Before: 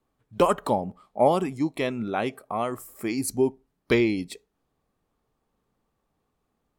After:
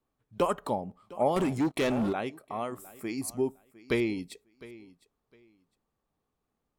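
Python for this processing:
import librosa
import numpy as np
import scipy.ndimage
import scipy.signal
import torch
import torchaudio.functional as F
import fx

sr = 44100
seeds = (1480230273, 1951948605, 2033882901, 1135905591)

y = fx.echo_feedback(x, sr, ms=707, feedback_pct=21, wet_db=-19.5)
y = fx.leveller(y, sr, passes=3, at=(1.36, 2.13))
y = F.gain(torch.from_numpy(y), -6.5).numpy()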